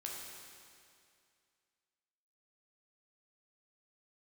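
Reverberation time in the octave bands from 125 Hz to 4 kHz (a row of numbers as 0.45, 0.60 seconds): 2.3, 2.3, 2.3, 2.3, 2.3, 2.2 seconds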